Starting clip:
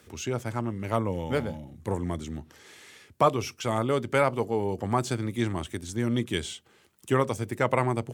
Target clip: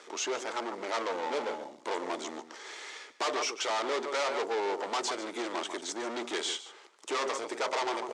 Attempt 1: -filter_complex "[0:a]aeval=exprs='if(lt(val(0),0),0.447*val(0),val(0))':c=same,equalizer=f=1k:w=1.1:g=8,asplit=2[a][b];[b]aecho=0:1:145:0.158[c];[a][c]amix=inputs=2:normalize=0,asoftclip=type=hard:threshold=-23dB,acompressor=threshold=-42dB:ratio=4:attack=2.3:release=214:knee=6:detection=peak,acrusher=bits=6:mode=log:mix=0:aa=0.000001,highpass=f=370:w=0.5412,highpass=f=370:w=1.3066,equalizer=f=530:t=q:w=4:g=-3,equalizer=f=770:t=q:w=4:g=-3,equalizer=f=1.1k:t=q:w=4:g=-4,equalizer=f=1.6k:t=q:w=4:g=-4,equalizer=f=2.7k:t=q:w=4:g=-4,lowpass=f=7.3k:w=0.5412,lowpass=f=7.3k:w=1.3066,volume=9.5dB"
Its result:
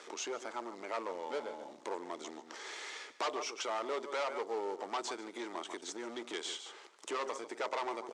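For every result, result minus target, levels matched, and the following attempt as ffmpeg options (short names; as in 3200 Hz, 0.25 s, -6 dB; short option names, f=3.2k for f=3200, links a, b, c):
compressor: peak gain reduction +14 dB; hard clip: distortion -6 dB
-filter_complex "[0:a]aeval=exprs='if(lt(val(0),0),0.447*val(0),val(0))':c=same,equalizer=f=1k:w=1.1:g=8,asplit=2[a][b];[b]aecho=0:1:145:0.158[c];[a][c]amix=inputs=2:normalize=0,asoftclip=type=hard:threshold=-23dB,acrusher=bits=6:mode=log:mix=0:aa=0.000001,highpass=f=370:w=0.5412,highpass=f=370:w=1.3066,equalizer=f=530:t=q:w=4:g=-3,equalizer=f=770:t=q:w=4:g=-3,equalizer=f=1.1k:t=q:w=4:g=-4,equalizer=f=1.6k:t=q:w=4:g=-4,equalizer=f=2.7k:t=q:w=4:g=-4,lowpass=f=7.3k:w=0.5412,lowpass=f=7.3k:w=1.3066,volume=9.5dB"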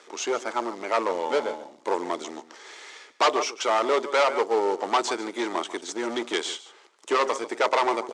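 hard clip: distortion -6 dB
-filter_complex "[0:a]aeval=exprs='if(lt(val(0),0),0.447*val(0),val(0))':c=same,equalizer=f=1k:w=1.1:g=8,asplit=2[a][b];[b]aecho=0:1:145:0.158[c];[a][c]amix=inputs=2:normalize=0,asoftclip=type=hard:threshold=-34.5dB,acrusher=bits=6:mode=log:mix=0:aa=0.000001,highpass=f=370:w=0.5412,highpass=f=370:w=1.3066,equalizer=f=530:t=q:w=4:g=-3,equalizer=f=770:t=q:w=4:g=-3,equalizer=f=1.1k:t=q:w=4:g=-4,equalizer=f=1.6k:t=q:w=4:g=-4,equalizer=f=2.7k:t=q:w=4:g=-4,lowpass=f=7.3k:w=0.5412,lowpass=f=7.3k:w=1.3066,volume=9.5dB"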